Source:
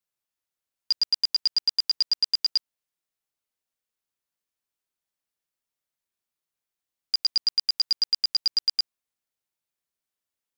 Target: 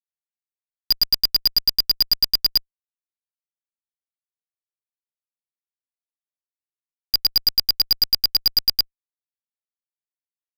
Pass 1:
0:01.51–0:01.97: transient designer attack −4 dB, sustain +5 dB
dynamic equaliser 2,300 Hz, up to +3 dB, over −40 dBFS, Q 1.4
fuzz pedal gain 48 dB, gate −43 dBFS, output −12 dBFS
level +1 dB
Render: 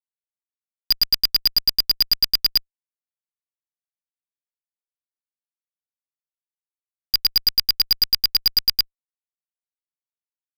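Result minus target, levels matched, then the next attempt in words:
2,000 Hz band +5.0 dB
0:01.51–0:01.97: transient designer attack −4 dB, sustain +5 dB
dynamic equaliser 1,100 Hz, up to +3 dB, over −40 dBFS, Q 1.4
fuzz pedal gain 48 dB, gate −43 dBFS, output −12 dBFS
level +1 dB

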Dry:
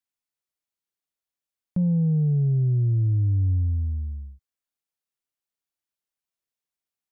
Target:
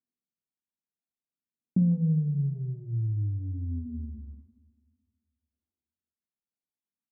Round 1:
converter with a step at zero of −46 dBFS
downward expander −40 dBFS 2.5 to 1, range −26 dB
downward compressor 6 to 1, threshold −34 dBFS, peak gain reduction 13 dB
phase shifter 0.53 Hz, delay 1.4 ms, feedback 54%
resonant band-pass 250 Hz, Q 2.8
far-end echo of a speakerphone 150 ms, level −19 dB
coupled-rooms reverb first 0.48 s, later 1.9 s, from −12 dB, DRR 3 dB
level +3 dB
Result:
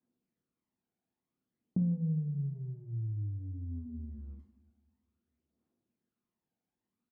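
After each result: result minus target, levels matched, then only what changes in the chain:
downward compressor: peak gain reduction +7 dB; converter with a step at zero: distortion +9 dB
change: downward compressor 6 to 1, threshold −25.5 dBFS, peak gain reduction 5.5 dB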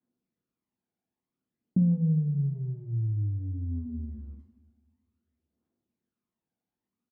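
converter with a step at zero: distortion +9 dB
change: converter with a step at zero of −55 dBFS

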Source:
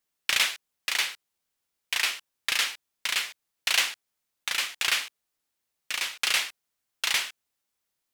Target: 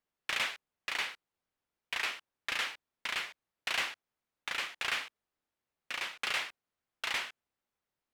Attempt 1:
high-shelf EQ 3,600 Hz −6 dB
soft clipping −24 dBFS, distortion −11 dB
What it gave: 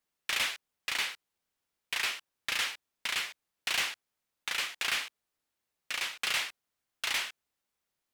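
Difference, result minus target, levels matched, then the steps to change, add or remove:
8,000 Hz band +4.5 dB
change: high-shelf EQ 3,600 Hz −17.5 dB

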